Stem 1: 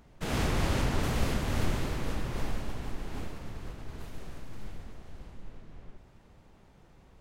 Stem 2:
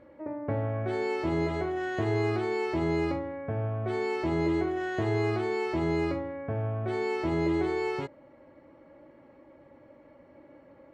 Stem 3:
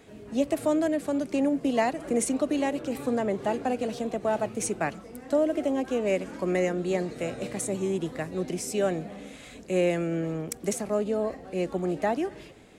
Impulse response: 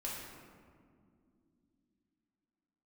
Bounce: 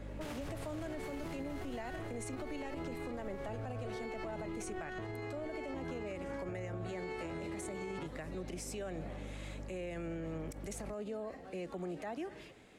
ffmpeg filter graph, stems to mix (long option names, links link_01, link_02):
-filter_complex "[0:a]adynamicequalizer=threshold=0.00158:dfrequency=7100:dqfactor=0.7:tfrequency=7100:tqfactor=0.7:attack=5:release=100:ratio=0.375:range=2.5:mode=boostabove:tftype=highshelf,volume=-4.5dB[link_01];[1:a]volume=0dB[link_02];[2:a]volume=-8dB[link_03];[link_01][link_02]amix=inputs=2:normalize=0,aeval=exprs='val(0)+0.00631*(sin(2*PI*50*n/s)+sin(2*PI*2*50*n/s)/2+sin(2*PI*3*50*n/s)/3+sin(2*PI*4*50*n/s)/4+sin(2*PI*5*50*n/s)/5)':channel_layout=same,alimiter=level_in=5dB:limit=-24dB:level=0:latency=1:release=387,volume=-5dB,volume=0dB[link_04];[link_03][link_04]amix=inputs=2:normalize=0,equalizer=frequency=1900:width=0.48:gain=4,acrossover=split=130[link_05][link_06];[link_06]acompressor=threshold=-33dB:ratio=6[link_07];[link_05][link_07]amix=inputs=2:normalize=0,alimiter=level_in=9.5dB:limit=-24dB:level=0:latency=1:release=60,volume=-9.5dB"